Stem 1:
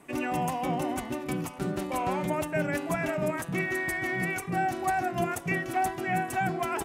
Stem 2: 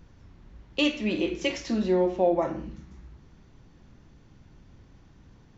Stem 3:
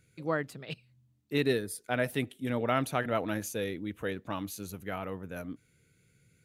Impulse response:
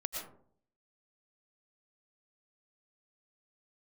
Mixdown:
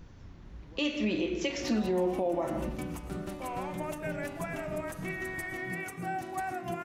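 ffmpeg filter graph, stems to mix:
-filter_complex "[0:a]adelay=1500,volume=0.316,asplit=2[s0][s1];[s1]volume=0.447[s2];[1:a]volume=1.06,asplit=2[s3][s4];[s4]volume=0.299[s5];[2:a]acompressor=threshold=0.0112:ratio=6,adelay=450,volume=0.168[s6];[3:a]atrim=start_sample=2205[s7];[s2][s5]amix=inputs=2:normalize=0[s8];[s8][s7]afir=irnorm=-1:irlink=0[s9];[s0][s3][s6][s9]amix=inputs=4:normalize=0,alimiter=limit=0.0891:level=0:latency=1:release=220"

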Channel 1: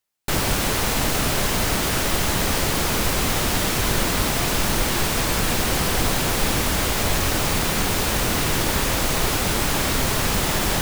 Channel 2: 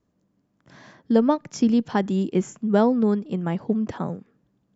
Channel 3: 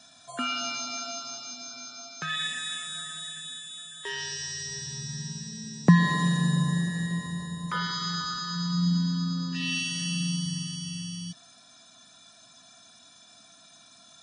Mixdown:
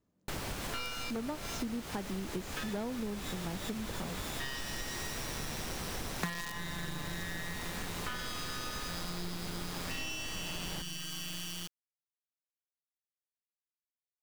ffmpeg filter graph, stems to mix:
-filter_complex "[0:a]highshelf=f=8200:g=-5,volume=0.224[s0];[1:a]aeval=exprs='0.266*(abs(mod(val(0)/0.266+3,4)-2)-1)':c=same,volume=0.473,asplit=2[s1][s2];[2:a]equalizer=f=2200:t=o:w=1.8:g=13.5,acrusher=bits=3:dc=4:mix=0:aa=0.000001,adelay=350,volume=0.668[s3];[s2]apad=whole_len=642944[s4];[s3][s4]sidechaincompress=threshold=0.00708:ratio=8:attack=16:release=106[s5];[s0][s1][s5]amix=inputs=3:normalize=0,acompressor=threshold=0.0178:ratio=6"

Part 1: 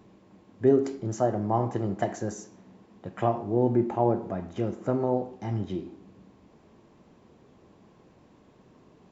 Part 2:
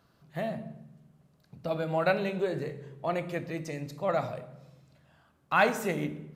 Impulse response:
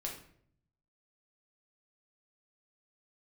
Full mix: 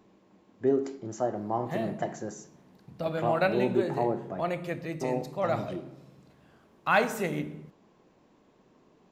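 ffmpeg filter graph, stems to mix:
-filter_complex "[0:a]equalizer=f=87:t=o:w=1.6:g=-9,volume=0.668,asplit=3[s0][s1][s2];[s0]atrim=end=4.42,asetpts=PTS-STARTPTS,afade=t=out:st=4.416:d=0.004:c=hsin[s3];[s1]atrim=start=4.42:end=5.01,asetpts=PTS-STARTPTS,volume=0[s4];[s2]atrim=start=5.01,asetpts=PTS-STARTPTS,afade=t=in:d=0.004:c=hsin[s5];[s3][s4][s5]concat=n=3:v=0:a=1[s6];[1:a]adelay=1350,volume=1[s7];[s6][s7]amix=inputs=2:normalize=0"

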